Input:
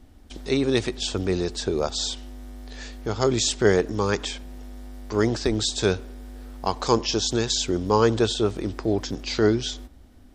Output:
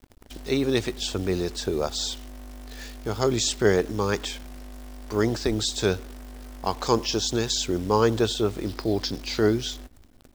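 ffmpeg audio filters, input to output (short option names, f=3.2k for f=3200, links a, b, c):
-filter_complex "[0:a]asettb=1/sr,asplit=3[a][b][c];[a]atrim=end=8.664[d];[b]atrim=start=8.66:end=9.22,asetpts=PTS-STARTPTS,afade=t=in:d=0.004:c=qsin,afade=t=out:st=0.556:d=0.004:c=qsin,lowpass=f=4.7k:t=q:w=3.3[e];[c]atrim=start=9.216[f];[d][e]acrossfade=d=0.004:c1=hsin:c2=qsin[g];[g][f]acrossfade=d=0.004:c1=qsin:c2=hsin,acrusher=bits=8:dc=4:mix=0:aa=0.000001,volume=-1.5dB"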